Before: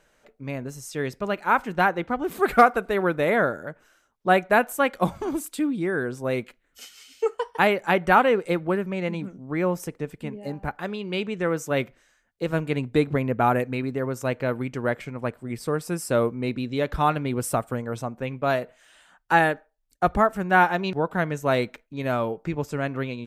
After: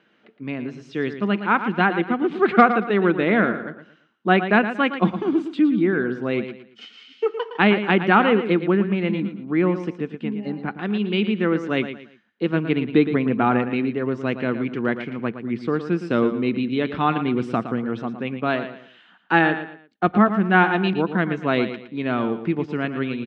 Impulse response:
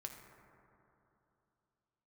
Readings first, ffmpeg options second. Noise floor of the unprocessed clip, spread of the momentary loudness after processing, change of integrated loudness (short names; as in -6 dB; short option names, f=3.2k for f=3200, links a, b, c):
-66 dBFS, 12 LU, +3.0 dB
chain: -filter_complex "[0:a]highpass=f=120:w=0.5412,highpass=f=120:w=1.3066,equalizer=f=140:t=q:w=4:g=-4,equalizer=f=210:t=q:w=4:g=9,equalizer=f=330:t=q:w=4:g=6,equalizer=f=580:t=q:w=4:g=-8,equalizer=f=890:t=q:w=4:g=-4,equalizer=f=3k:t=q:w=4:g=4,lowpass=f=3.8k:w=0.5412,lowpass=f=3.8k:w=1.3066,asplit=2[a][b];[b]aecho=0:1:114|228|342:0.299|0.0925|0.0287[c];[a][c]amix=inputs=2:normalize=0,volume=2.5dB"